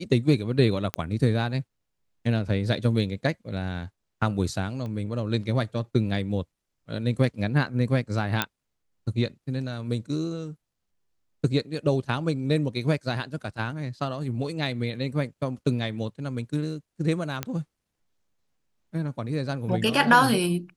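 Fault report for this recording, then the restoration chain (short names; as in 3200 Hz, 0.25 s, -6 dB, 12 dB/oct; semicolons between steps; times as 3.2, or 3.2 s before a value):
0.94 pop -11 dBFS
4.86 pop -25 dBFS
8.42 pop -7 dBFS
17.43 pop -12 dBFS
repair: de-click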